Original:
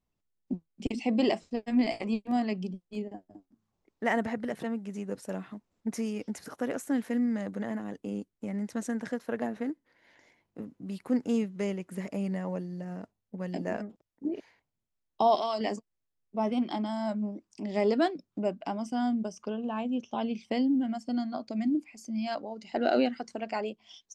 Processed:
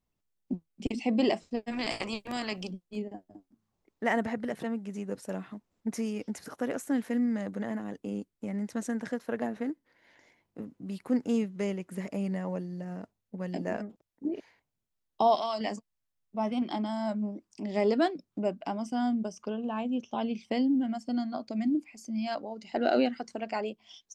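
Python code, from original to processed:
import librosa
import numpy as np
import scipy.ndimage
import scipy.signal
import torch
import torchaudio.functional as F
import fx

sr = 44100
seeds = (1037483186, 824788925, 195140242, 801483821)

y = fx.spectral_comp(x, sr, ratio=2.0, at=(1.71, 2.7), fade=0.02)
y = fx.peak_eq(y, sr, hz=390.0, db=-7.0, octaves=0.77, at=(15.33, 16.62))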